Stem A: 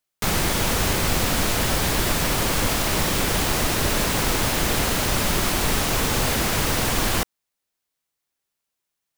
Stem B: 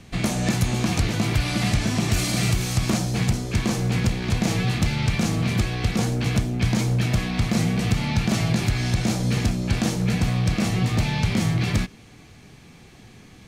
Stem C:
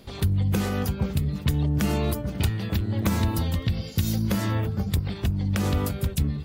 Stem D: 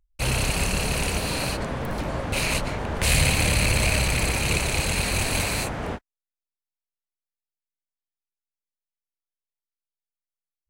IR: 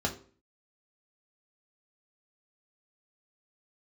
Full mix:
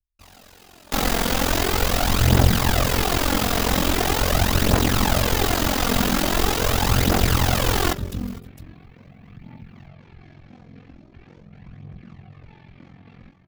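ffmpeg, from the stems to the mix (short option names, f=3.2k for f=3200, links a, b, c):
-filter_complex "[0:a]adelay=700,volume=1dB,asplit=3[a][b][c];[b]volume=-14.5dB[d];[c]volume=-22.5dB[e];[1:a]lowpass=2.3k,alimiter=limit=-16.5dB:level=0:latency=1:release=52,adelay=1450,volume=-19dB,asplit=2[f][g];[g]volume=-7.5dB[h];[2:a]adelay=1950,volume=-9.5dB,asplit=3[i][j][k];[j]volume=-4dB[l];[k]volume=-5dB[m];[3:a]aeval=exprs='0.0447*(abs(mod(val(0)/0.0447+3,4)-2)-1)':c=same,volume=-17.5dB,asplit=2[n][o];[o]volume=-9.5dB[p];[4:a]atrim=start_sample=2205[q];[d][l][p]amix=inputs=3:normalize=0[r];[r][q]afir=irnorm=-1:irlink=0[s];[e][h][m]amix=inputs=3:normalize=0,aecho=0:1:459:1[t];[a][f][i][n][s][t]amix=inputs=6:normalize=0,equalizer=f=9.3k:t=o:w=0.57:g=-5.5,aphaser=in_gain=1:out_gain=1:delay=4.5:decay=0.47:speed=0.42:type=triangular,aeval=exprs='val(0)*sin(2*PI*22*n/s)':c=same"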